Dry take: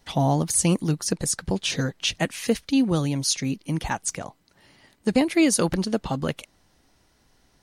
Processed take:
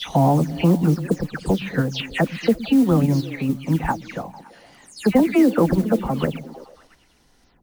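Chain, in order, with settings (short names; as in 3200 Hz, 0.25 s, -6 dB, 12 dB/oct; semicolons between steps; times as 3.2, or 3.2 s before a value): spectral delay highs early, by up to 0.181 s; delay with a stepping band-pass 0.113 s, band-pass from 160 Hz, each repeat 0.7 oct, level -9.5 dB; in parallel at +0.5 dB: level quantiser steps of 12 dB; on the sum: treble ducked by the level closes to 1600 Hz, closed at -17.5 dBFS; modulation noise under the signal 27 dB; gain +1 dB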